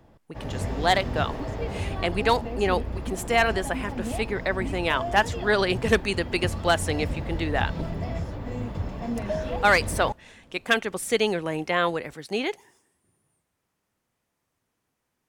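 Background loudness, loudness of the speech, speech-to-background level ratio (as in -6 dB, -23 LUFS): -32.5 LUFS, -25.5 LUFS, 7.0 dB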